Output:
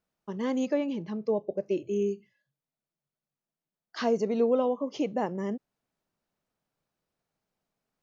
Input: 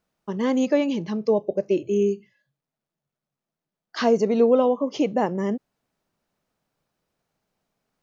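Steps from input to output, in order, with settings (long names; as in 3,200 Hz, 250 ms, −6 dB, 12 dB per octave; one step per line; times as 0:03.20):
0:00.73–0:01.65: high-shelf EQ 3,800 Hz → 5,100 Hz −11 dB
level −7 dB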